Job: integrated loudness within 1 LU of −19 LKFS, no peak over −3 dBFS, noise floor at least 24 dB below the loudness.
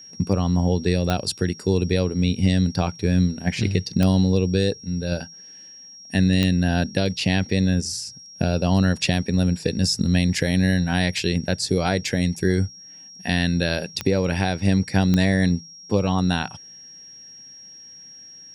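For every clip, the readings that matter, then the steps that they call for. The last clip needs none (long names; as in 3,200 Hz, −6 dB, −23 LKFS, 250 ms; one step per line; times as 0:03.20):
number of clicks 5; interfering tone 5,600 Hz; level of the tone −41 dBFS; integrated loudness −22.0 LKFS; sample peak −5.0 dBFS; target loudness −19.0 LKFS
→ click removal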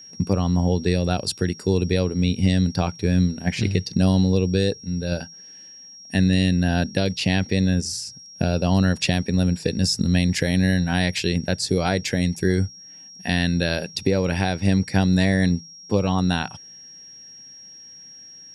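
number of clicks 0; interfering tone 5,600 Hz; level of the tone −41 dBFS
→ notch filter 5,600 Hz, Q 30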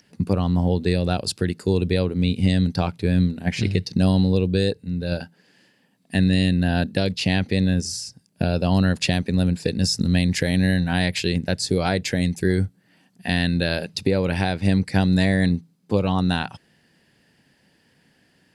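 interfering tone none found; integrated loudness −22.0 LKFS; sample peak −6.5 dBFS; target loudness −19.0 LKFS
→ level +3 dB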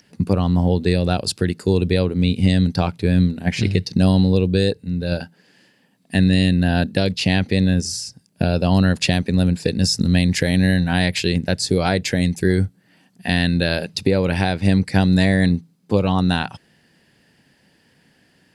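integrated loudness −19.0 LKFS; sample peak −3.5 dBFS; background noise floor −59 dBFS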